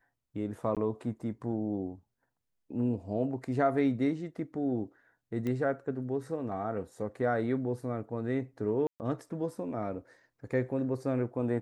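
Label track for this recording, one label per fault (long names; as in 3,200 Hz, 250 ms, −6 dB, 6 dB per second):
0.750000	0.770000	drop-out 17 ms
5.470000	5.470000	click −23 dBFS
8.870000	9.000000	drop-out 129 ms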